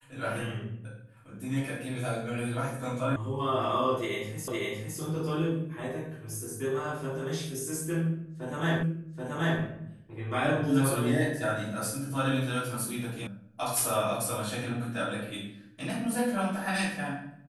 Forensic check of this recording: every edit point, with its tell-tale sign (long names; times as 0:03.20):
0:03.16: cut off before it has died away
0:04.48: the same again, the last 0.51 s
0:08.83: the same again, the last 0.78 s
0:13.27: cut off before it has died away